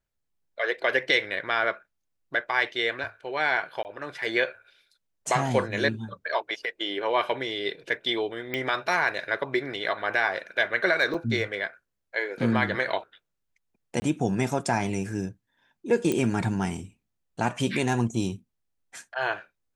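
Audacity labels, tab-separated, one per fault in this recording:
3.830000	3.850000	gap 19 ms
8.540000	8.540000	pop -17 dBFS
11.140000	11.140000	gap 4.6 ms
14.000000	14.020000	gap 20 ms
16.120000	16.120000	pop -13 dBFS

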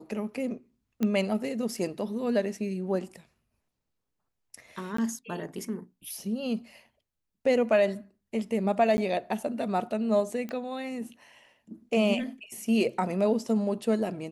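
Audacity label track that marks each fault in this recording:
1.030000	1.030000	pop -16 dBFS
4.970000	4.980000	gap 14 ms
8.970000	8.980000	gap 10 ms
10.490000	10.490000	pop -24 dBFS

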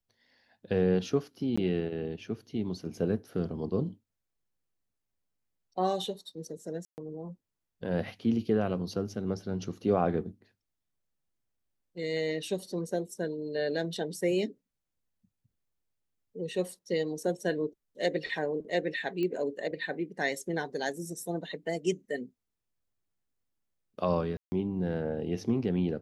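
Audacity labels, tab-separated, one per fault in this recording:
1.560000	1.570000	gap 15 ms
6.850000	6.980000	gap 0.129 s
19.230000	19.230000	pop -22 dBFS
24.370000	24.520000	gap 0.15 s

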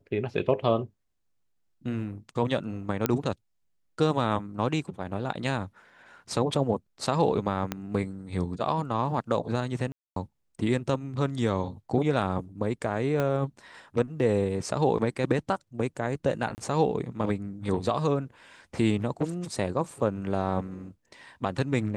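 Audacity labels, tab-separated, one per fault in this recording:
3.060000	3.060000	pop -8 dBFS
7.720000	7.720000	pop -14 dBFS
9.920000	10.160000	gap 0.243 s
13.200000	13.200000	pop -15 dBFS
16.550000	16.580000	gap 29 ms

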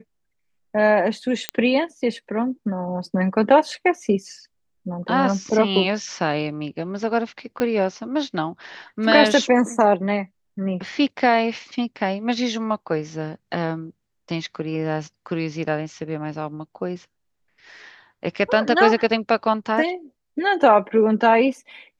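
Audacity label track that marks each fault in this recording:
1.490000	1.490000	pop -5 dBFS
7.600000	7.600000	pop -9 dBFS

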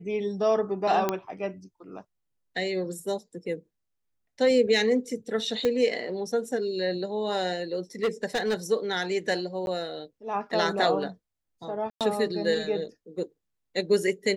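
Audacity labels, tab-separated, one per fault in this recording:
1.090000	1.090000	pop -11 dBFS
5.650000	5.650000	pop -13 dBFS
8.030000	8.550000	clipped -21 dBFS
9.660000	9.670000	gap 11 ms
11.900000	12.010000	gap 0.107 s

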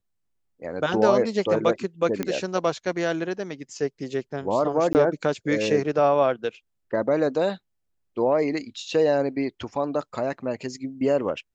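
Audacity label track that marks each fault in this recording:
2.230000	2.230000	pop -13 dBFS
4.930000	4.950000	gap 19 ms

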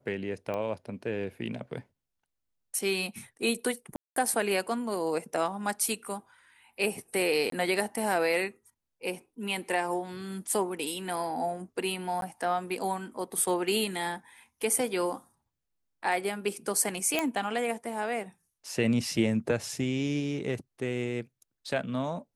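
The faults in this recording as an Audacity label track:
0.540000	0.540000	pop -22 dBFS
3.960000	4.160000	gap 0.203 s
7.500000	7.520000	gap 23 ms
12.210000	12.220000	gap 12 ms
17.190000	17.190000	pop -12 dBFS

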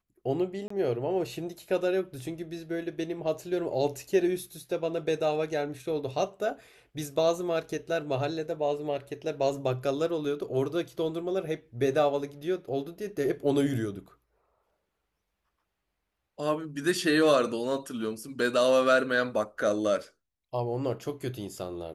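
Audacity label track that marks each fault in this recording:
0.680000	0.700000	gap 24 ms

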